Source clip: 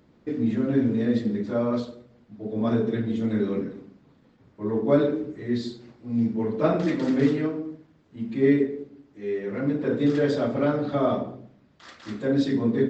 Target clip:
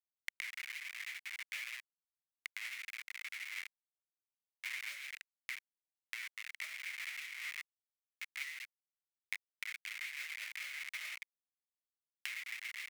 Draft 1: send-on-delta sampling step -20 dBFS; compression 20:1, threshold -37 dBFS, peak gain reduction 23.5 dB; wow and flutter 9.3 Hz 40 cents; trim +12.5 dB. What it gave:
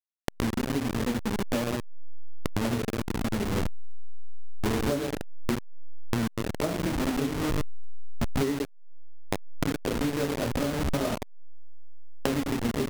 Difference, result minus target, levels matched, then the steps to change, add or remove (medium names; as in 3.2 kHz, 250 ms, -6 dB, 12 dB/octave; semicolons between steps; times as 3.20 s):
2 kHz band -10.5 dB
add after compression: ladder high-pass 2 kHz, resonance 75%